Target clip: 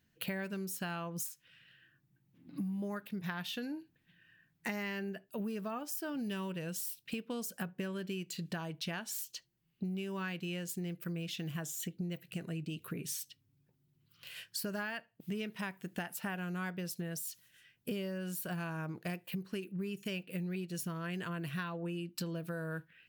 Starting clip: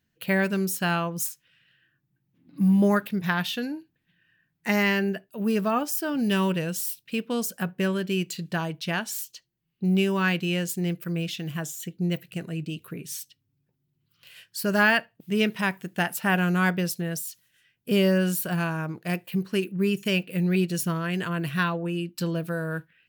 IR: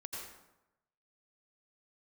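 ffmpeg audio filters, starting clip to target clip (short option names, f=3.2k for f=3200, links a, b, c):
-af "acompressor=threshold=-37dB:ratio=12,volume=1dB"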